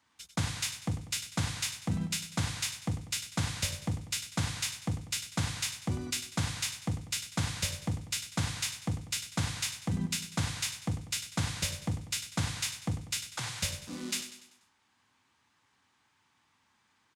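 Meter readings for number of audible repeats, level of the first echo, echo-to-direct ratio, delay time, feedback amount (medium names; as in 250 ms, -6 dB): 4, -11.0 dB, -10.0 dB, 97 ms, 46%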